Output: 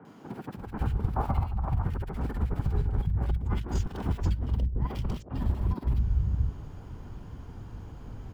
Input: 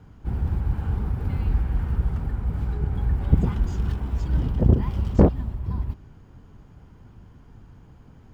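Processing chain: 1.16–1.84 band shelf 890 Hz +13.5 dB 1.3 oct; negative-ratio compressor -28 dBFS, ratio -0.5; three bands offset in time mids, highs, lows 50/560 ms, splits 180/1900 Hz; gain +1 dB

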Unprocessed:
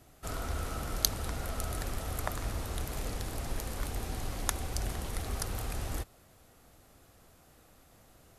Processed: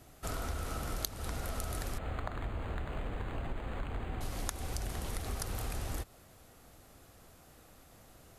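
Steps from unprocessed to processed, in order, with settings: compressor 6:1, threshold -35 dBFS, peak gain reduction 14.5 dB; 1.98–4.21 decimation joined by straight lines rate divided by 8×; gain +2 dB

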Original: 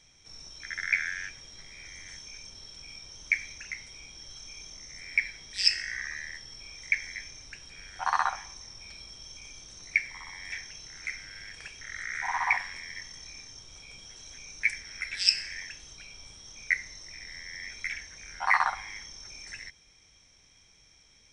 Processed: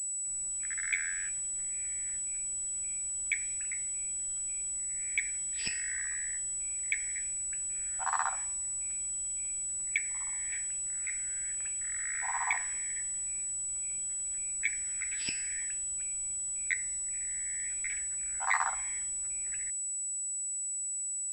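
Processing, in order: low-pass opened by the level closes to 2500 Hz, open at -27 dBFS; pulse-width modulation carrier 7900 Hz; gain -5.5 dB

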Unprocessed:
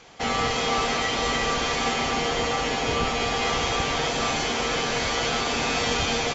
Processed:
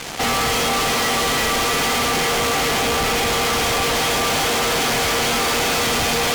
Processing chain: tape echo 0.402 s, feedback 75%, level -4 dB, low-pass 6000 Hz; fuzz box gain 49 dB, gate -48 dBFS; gain -5.5 dB

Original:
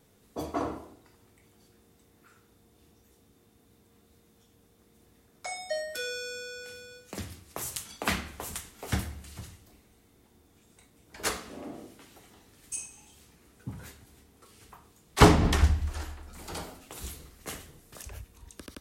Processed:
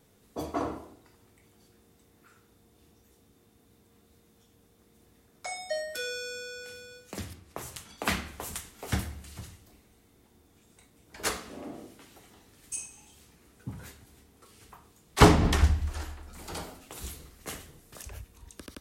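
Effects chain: 7.33–7.98 high shelf 3700 Hz -9.5 dB

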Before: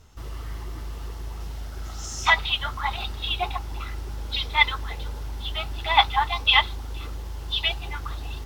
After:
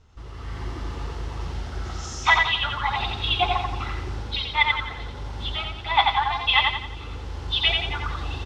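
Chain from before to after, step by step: notch 640 Hz, Q 20; on a send: feedback echo 87 ms, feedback 42%, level -3.5 dB; on the sum: AGC gain up to 9 dB; air absorption 96 m; gain -3.5 dB

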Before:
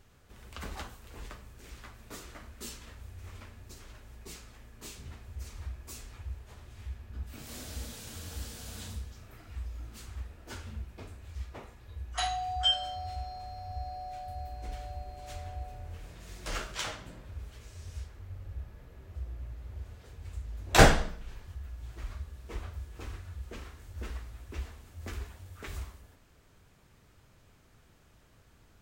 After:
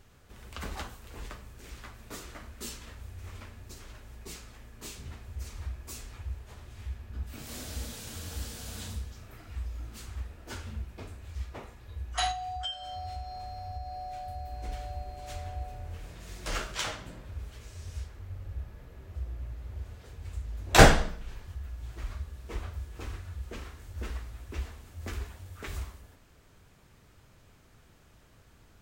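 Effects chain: 12.31–14.53 compressor 6:1, threshold -37 dBFS, peak gain reduction 14 dB; gain +2.5 dB

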